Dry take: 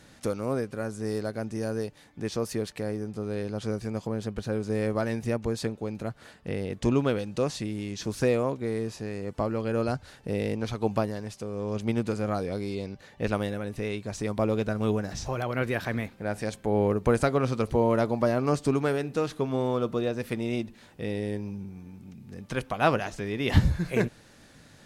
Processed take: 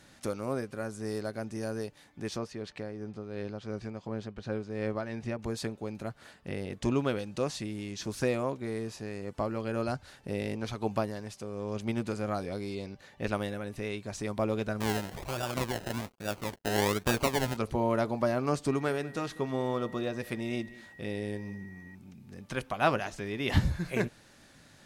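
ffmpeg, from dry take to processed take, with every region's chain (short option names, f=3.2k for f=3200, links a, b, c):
-filter_complex "[0:a]asettb=1/sr,asplit=3[a][b][c];[a]atrim=end=2.384[d];[b]atrim=start=2.38:end=5.39,asetpts=PTS-STARTPTS,afade=t=in:d=0.004:c=qsin,afade=t=out:st=3.006:d=0.004:c=qsin,lowpass=4.8k,tremolo=f=2.8:d=0.46[e];[c]atrim=start=5.386[f];[d][e]acrossfade=d=0.004:c1=hsin:c2=qsin[g];[g][f]acrossfade=d=0.004:c1=qsin:c2=hsin,asettb=1/sr,asplit=3[h][i][j];[h]atrim=end=14.804[k];[i]atrim=start=14.8:end=17.57,asetpts=PTS-STARTPTS,afade=t=in:d=0.004:c=qsin,afade=t=out:st=2.766:d=0.004:c=qsin,acrusher=samples=30:mix=1:aa=0.000001:lfo=1:lforange=18:lforate=1.2,aeval=exprs='sgn(val(0))*max(abs(val(0))-0.00266,0)':c=same[l];[j]atrim=start=17.566[m];[k][l]acrossfade=d=0.004:c1=hsin:c2=qsin[n];[n][m]acrossfade=d=0.004:c1=qsin:c2=hsin,asettb=1/sr,asplit=3[o][p][q];[o]atrim=end=18.684[r];[p]atrim=start=18.68:end=21.95,asetpts=PTS-STARTPTS,afade=t=in:d=0.004:c=qsin,afade=t=out:st=3.266:d=0.004:c=qsin,aecho=1:1:195:0.1,atrim=end_sample=144207,aeval=exprs='val(0)+0.00355*sin(2*PI*1900*n/s)':c=same[s];[q]atrim=start=21.946[t];[r][s]acrossfade=d=0.004:c1=hsin:c2=qsin[u];[u][t]acrossfade=d=0.004:c1=qsin:c2=hsin,lowshelf=f=370:g=-3.5,bandreject=f=470:w=12,volume=-2dB"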